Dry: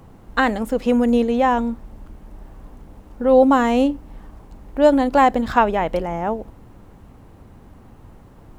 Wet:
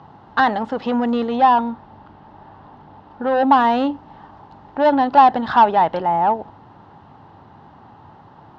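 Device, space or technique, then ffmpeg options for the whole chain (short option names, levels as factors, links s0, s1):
overdrive pedal into a guitar cabinet: -filter_complex "[0:a]asplit=2[s0][s1];[s1]highpass=f=720:p=1,volume=7.94,asoftclip=type=tanh:threshold=0.841[s2];[s0][s2]amix=inputs=2:normalize=0,lowpass=f=4100:p=1,volume=0.501,highpass=75,equalizer=f=100:t=q:w=4:g=8,equalizer=f=150:t=q:w=4:g=7,equalizer=f=500:t=q:w=4:g=-6,equalizer=f=860:t=q:w=4:g=9,equalizer=f=2300:t=q:w=4:g=-10,lowpass=f=4500:w=0.5412,lowpass=f=4500:w=1.3066,asettb=1/sr,asplit=3[s3][s4][s5];[s3]atrim=end=1.644[s6];[s4]atrim=start=1.64:end=3.22,asetpts=PTS-STARTPTS,afade=t=in:d=0.004:c=qsin,afade=t=out:st=1.576:d=0.004:c=qsin,lowpass=5400[s7];[s5]atrim=start=3.216[s8];[s6][s7]acrossfade=d=0.004:c1=hsin:c2=qsin[s9];[s9][s8]acrossfade=d=0.004:c1=qsin:c2=hsin,volume=0.531"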